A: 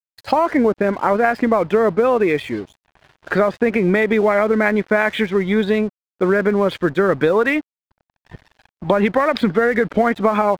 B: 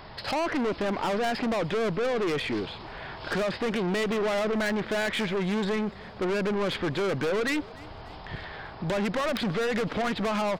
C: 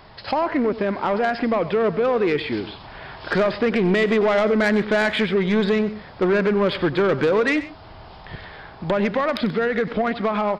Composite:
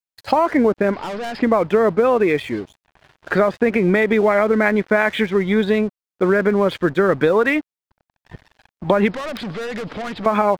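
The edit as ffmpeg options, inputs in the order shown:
-filter_complex "[1:a]asplit=2[a][b];[0:a]asplit=3[c][d][e];[c]atrim=end=0.942[f];[a]atrim=start=0.938:end=1.422[g];[d]atrim=start=1.418:end=9.112[h];[b]atrim=start=9.108:end=10.262[i];[e]atrim=start=10.258[j];[f][g]acrossfade=d=0.004:c1=hsin:c2=hsin[k];[k][h]acrossfade=d=0.004:c1=hsin:c2=hsin[l];[l][i]acrossfade=d=0.004:c1=hsin:c2=hsin[m];[m][j]acrossfade=d=0.004:c1=hsin:c2=hsin"

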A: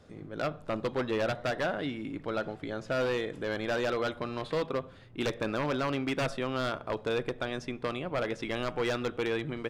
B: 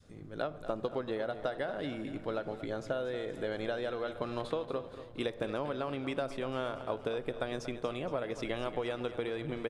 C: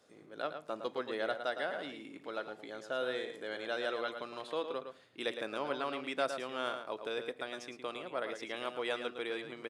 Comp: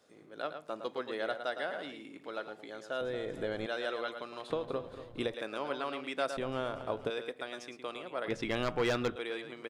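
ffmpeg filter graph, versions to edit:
-filter_complex "[1:a]asplit=3[a][b][c];[2:a]asplit=5[d][e][f][g][h];[d]atrim=end=3.012[i];[a]atrim=start=3.008:end=3.662[j];[e]atrim=start=3.658:end=4.502[k];[b]atrim=start=4.498:end=5.342[l];[f]atrim=start=5.338:end=6.372[m];[c]atrim=start=6.368:end=7.102[n];[g]atrim=start=7.098:end=8.282[o];[0:a]atrim=start=8.278:end=9.162[p];[h]atrim=start=9.158[q];[i][j]acrossfade=d=0.004:c1=hsin:c2=hsin[r];[r][k]acrossfade=d=0.004:c1=hsin:c2=hsin[s];[s][l]acrossfade=d=0.004:c1=hsin:c2=hsin[t];[t][m]acrossfade=d=0.004:c1=hsin:c2=hsin[u];[u][n]acrossfade=d=0.004:c1=hsin:c2=hsin[v];[v][o]acrossfade=d=0.004:c1=hsin:c2=hsin[w];[w][p]acrossfade=d=0.004:c1=hsin:c2=hsin[x];[x][q]acrossfade=d=0.004:c1=hsin:c2=hsin"

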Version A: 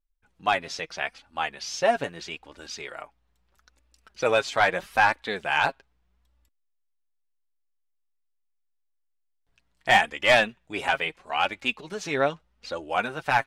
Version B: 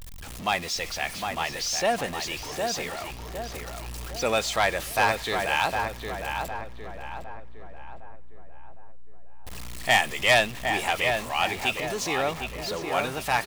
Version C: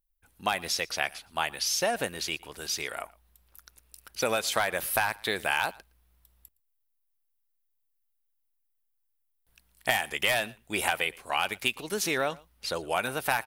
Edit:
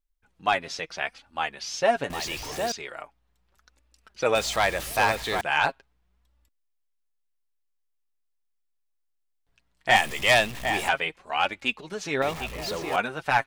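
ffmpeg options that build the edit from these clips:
-filter_complex "[1:a]asplit=4[a][b][c][d];[0:a]asplit=5[e][f][g][h][i];[e]atrim=end=2.102[j];[a]atrim=start=2.098:end=2.722[k];[f]atrim=start=2.718:end=4.352[l];[b]atrim=start=4.348:end=5.412[m];[g]atrim=start=5.408:end=9.962[n];[c]atrim=start=9.958:end=10.892[o];[h]atrim=start=10.888:end=12.222[p];[d]atrim=start=12.218:end=12.962[q];[i]atrim=start=12.958[r];[j][k]acrossfade=d=0.004:c1=hsin:c2=hsin[s];[s][l]acrossfade=d=0.004:c1=hsin:c2=hsin[t];[t][m]acrossfade=d=0.004:c1=hsin:c2=hsin[u];[u][n]acrossfade=d=0.004:c1=hsin:c2=hsin[v];[v][o]acrossfade=d=0.004:c1=hsin:c2=hsin[w];[w][p]acrossfade=d=0.004:c1=hsin:c2=hsin[x];[x][q]acrossfade=d=0.004:c1=hsin:c2=hsin[y];[y][r]acrossfade=d=0.004:c1=hsin:c2=hsin"

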